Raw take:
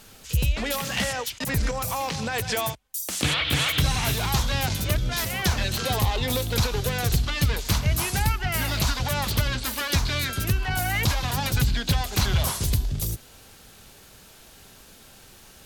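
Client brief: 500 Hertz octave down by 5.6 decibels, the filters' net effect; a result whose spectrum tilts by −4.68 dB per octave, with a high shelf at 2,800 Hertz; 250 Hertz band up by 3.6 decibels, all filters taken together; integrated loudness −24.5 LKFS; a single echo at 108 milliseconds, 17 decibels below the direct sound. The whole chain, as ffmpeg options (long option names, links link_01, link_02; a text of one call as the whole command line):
ffmpeg -i in.wav -af "equalizer=frequency=250:width_type=o:gain=7,equalizer=frequency=500:width_type=o:gain=-8.5,highshelf=frequency=2800:gain=-5.5,aecho=1:1:108:0.141,volume=1.5dB" out.wav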